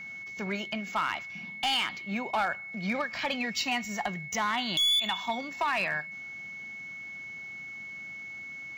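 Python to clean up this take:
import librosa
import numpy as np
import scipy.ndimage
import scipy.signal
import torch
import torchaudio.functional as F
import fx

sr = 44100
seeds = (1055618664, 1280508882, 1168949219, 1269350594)

y = fx.fix_declip(x, sr, threshold_db=-22.0)
y = fx.notch(y, sr, hz=2200.0, q=30.0)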